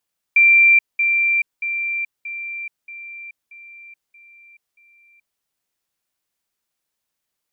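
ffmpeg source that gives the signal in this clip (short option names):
-f lavfi -i "aevalsrc='pow(10,(-8.5-6*floor(t/0.63))/20)*sin(2*PI*2360*t)*clip(min(mod(t,0.63),0.43-mod(t,0.63))/0.005,0,1)':d=5.04:s=44100"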